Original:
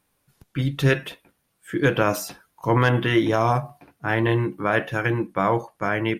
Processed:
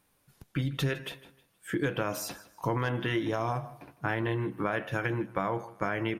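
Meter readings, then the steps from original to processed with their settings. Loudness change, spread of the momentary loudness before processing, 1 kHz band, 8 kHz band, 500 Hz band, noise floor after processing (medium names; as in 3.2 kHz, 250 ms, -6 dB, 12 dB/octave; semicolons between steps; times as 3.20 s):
-9.5 dB, 12 LU, -9.5 dB, -5.5 dB, -9.5 dB, -71 dBFS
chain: compression, threshold -27 dBFS, peak gain reduction 12.5 dB; on a send: feedback delay 157 ms, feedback 34%, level -18.5 dB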